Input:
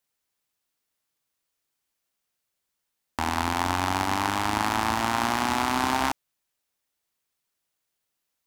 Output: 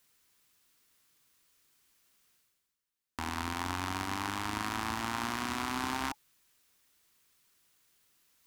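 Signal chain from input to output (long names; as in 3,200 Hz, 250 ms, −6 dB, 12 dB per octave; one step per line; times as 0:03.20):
parametric band 620 Hz −7 dB 0.61 octaves
notch filter 850 Hz, Q 12
reversed playback
upward compression, threshold −45 dBFS
reversed playback
level −8 dB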